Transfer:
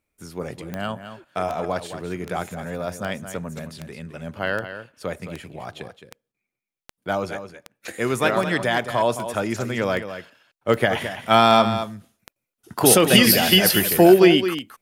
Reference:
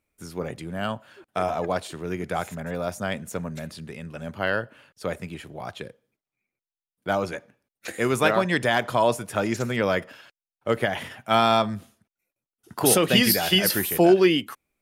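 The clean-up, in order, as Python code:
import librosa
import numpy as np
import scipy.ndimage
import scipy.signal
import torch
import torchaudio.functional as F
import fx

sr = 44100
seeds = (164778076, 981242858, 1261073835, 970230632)

y = fx.fix_declick_ar(x, sr, threshold=10.0)
y = fx.fix_interpolate(y, sr, at_s=(6.32,), length_ms=21.0)
y = fx.fix_echo_inverse(y, sr, delay_ms=216, level_db=-10.5)
y = fx.fix_level(y, sr, at_s=10.68, step_db=-4.5)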